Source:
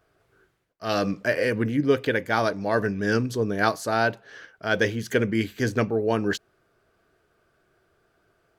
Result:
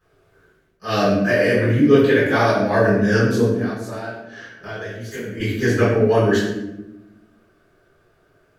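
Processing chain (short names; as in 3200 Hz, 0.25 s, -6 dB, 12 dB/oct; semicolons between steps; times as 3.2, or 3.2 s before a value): 3.45–5.4 compressor 10:1, threshold -34 dBFS, peak gain reduction 18.5 dB; reverb RT60 1.0 s, pre-delay 4 ms, DRR -12.5 dB; gain -9.5 dB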